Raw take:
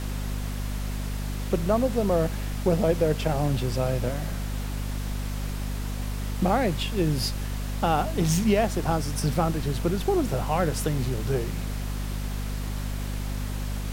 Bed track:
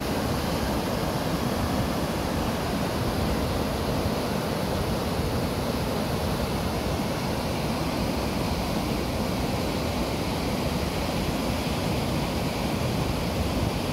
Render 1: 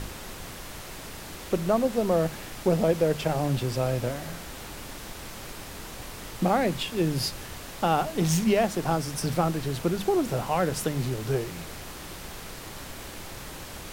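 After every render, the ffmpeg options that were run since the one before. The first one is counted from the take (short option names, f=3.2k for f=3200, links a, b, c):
-af "bandreject=f=50:t=h:w=6,bandreject=f=100:t=h:w=6,bandreject=f=150:t=h:w=6,bandreject=f=200:t=h:w=6,bandreject=f=250:t=h:w=6"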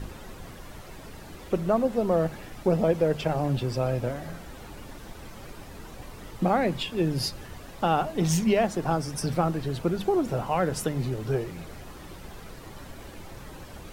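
-af "afftdn=nr=10:nf=-41"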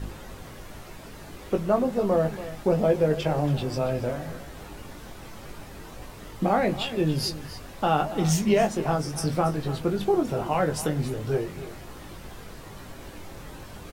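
-filter_complex "[0:a]asplit=2[a][b];[b]adelay=20,volume=-5.5dB[c];[a][c]amix=inputs=2:normalize=0,aecho=1:1:280:0.188"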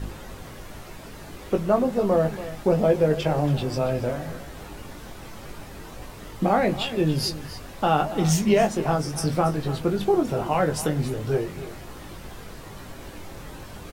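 -af "volume=2dB"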